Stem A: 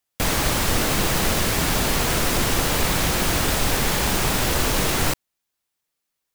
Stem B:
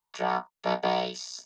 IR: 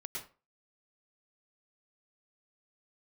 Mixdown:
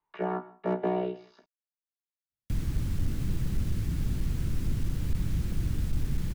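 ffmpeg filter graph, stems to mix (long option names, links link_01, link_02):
-filter_complex "[0:a]firequalizer=gain_entry='entry(110,0);entry(370,-22);entry(680,-26);entry(1500,-20)':delay=0.05:min_phase=1,adelay=2300,volume=-2dB[link_01];[1:a]lowpass=frequency=2400:width=0.5412,lowpass=frequency=2400:width=1.3066,volume=1.5dB,asplit=2[link_02][link_03];[link_03]volume=-15dB[link_04];[2:a]atrim=start_sample=2205[link_05];[link_04][link_05]afir=irnorm=-1:irlink=0[link_06];[link_01][link_02][link_06]amix=inputs=3:normalize=0,equalizer=frequency=350:width_type=o:width=0.73:gain=7,acrossover=split=440[link_07][link_08];[link_08]acompressor=threshold=-54dB:ratio=1.5[link_09];[link_07][link_09]amix=inputs=2:normalize=0,volume=20dB,asoftclip=hard,volume=-20dB"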